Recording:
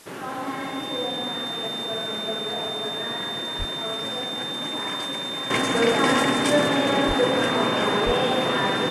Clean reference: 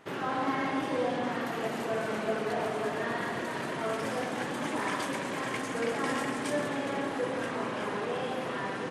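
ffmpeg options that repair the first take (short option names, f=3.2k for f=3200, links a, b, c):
-filter_complex "[0:a]bandreject=f=3.6k:w=30,asplit=3[a][b][c];[a]afade=t=out:st=3.58:d=0.02[d];[b]highpass=f=140:w=0.5412,highpass=f=140:w=1.3066,afade=t=in:st=3.58:d=0.02,afade=t=out:st=3.7:d=0.02[e];[c]afade=t=in:st=3.7:d=0.02[f];[d][e][f]amix=inputs=3:normalize=0,asplit=3[g][h][i];[g]afade=t=out:st=7.07:d=0.02[j];[h]highpass=f=140:w=0.5412,highpass=f=140:w=1.3066,afade=t=in:st=7.07:d=0.02,afade=t=out:st=7.19:d=0.02[k];[i]afade=t=in:st=7.19:d=0.02[l];[j][k][l]amix=inputs=3:normalize=0,asplit=3[m][n][o];[m]afade=t=out:st=8.05:d=0.02[p];[n]highpass=f=140:w=0.5412,highpass=f=140:w=1.3066,afade=t=in:st=8.05:d=0.02,afade=t=out:st=8.17:d=0.02[q];[o]afade=t=in:st=8.17:d=0.02[r];[p][q][r]amix=inputs=3:normalize=0,afwtdn=0.004,asetnsamples=n=441:p=0,asendcmd='5.5 volume volume -11dB',volume=0dB"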